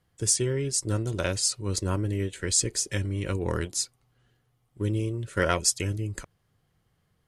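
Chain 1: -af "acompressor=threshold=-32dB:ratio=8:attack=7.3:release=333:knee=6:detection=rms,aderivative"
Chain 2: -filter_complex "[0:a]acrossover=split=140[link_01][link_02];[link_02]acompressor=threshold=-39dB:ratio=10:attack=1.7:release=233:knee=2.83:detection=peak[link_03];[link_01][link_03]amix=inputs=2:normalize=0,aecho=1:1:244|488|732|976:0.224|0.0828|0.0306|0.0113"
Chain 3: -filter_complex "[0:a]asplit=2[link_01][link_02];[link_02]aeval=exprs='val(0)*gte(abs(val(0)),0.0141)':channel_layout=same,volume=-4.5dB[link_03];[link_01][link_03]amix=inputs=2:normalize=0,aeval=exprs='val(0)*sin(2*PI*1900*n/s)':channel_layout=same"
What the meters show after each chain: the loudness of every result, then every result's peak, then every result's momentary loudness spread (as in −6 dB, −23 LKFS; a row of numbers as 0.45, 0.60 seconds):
−40.5, −35.5, −24.5 LKFS; −23.0, −23.0, −3.0 dBFS; 18, 9, 7 LU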